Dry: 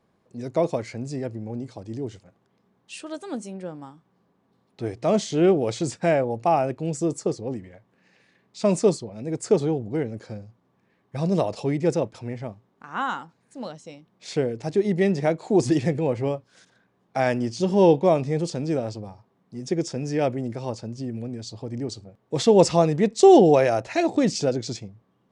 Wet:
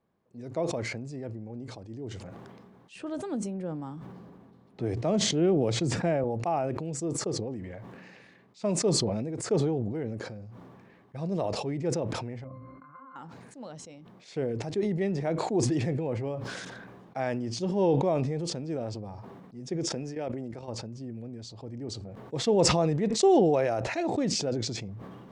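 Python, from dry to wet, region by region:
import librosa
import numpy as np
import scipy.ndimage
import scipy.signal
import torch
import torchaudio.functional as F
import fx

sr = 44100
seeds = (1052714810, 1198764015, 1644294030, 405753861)

y = fx.chain(x, sr, fx.low_shelf(hz=380.0, db=6.5),
    fx.band_squash(depth_pct=40), at=(2.95, 6.24))
y = fx.chain(y, sr, fx.peak_eq(hz=1500.0, db=14.5, octaves=0.92),
    fx.over_compress(threshold_db=-21.0, ratio=-0.5),
    fx.octave_resonator(note='C', decay_s=0.17), at=(12.44, 13.16))
y = fx.chain(y, sr, fx.highpass(hz=170.0, slope=6),
    fx.level_steps(step_db=12), at=(19.89, 20.68))
y = fx.high_shelf(y, sr, hz=3400.0, db=-7.5)
y = fx.sustainer(y, sr, db_per_s=27.0)
y = F.gain(torch.from_numpy(y), -8.5).numpy()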